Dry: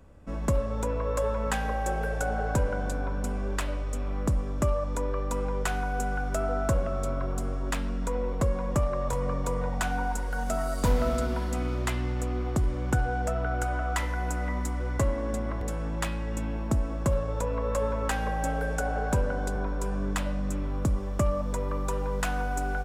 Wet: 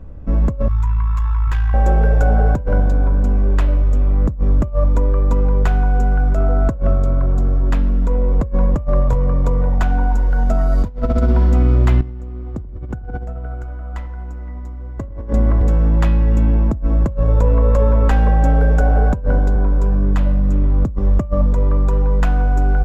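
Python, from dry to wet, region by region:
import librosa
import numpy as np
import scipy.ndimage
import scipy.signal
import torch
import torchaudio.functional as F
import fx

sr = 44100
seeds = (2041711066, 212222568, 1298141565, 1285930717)

y = fx.chain(x, sr, fx.cheby1_bandstop(low_hz=130.0, high_hz=960.0, order=4),
    fx.tube_stage(drive_db=25.0, bias=0.6), at=(0.68, 1.74))
y = fx.chain(y, sr, fx.echo_wet_lowpass(ms=84, feedback_pct=53, hz=1100.0, wet_db=-7.0),
    fx.env_flatten(amount_pct=100), at=(12.02, 15.33))
y = fx.tilt_eq(y, sr, slope=-3.0)
y = fx.over_compress(y, sr, threshold_db=-18.0, ratio=-0.5)
y = fx.peak_eq(y, sr, hz=8900.0, db=-13.5, octaves=0.36)
y = F.gain(torch.from_numpy(y), 4.0).numpy()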